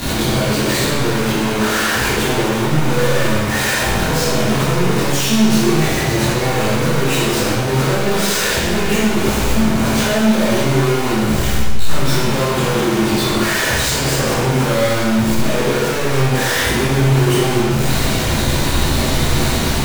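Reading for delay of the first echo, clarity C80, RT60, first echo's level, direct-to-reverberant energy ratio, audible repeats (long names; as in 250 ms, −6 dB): no echo audible, 0.5 dB, 1.5 s, no echo audible, −11.5 dB, no echo audible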